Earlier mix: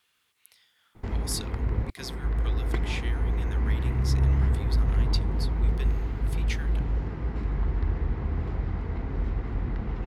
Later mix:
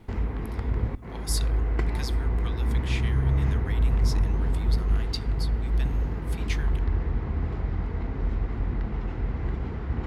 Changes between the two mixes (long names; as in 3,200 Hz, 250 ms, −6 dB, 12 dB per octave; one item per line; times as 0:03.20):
background: entry −0.95 s
reverb: on, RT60 0.70 s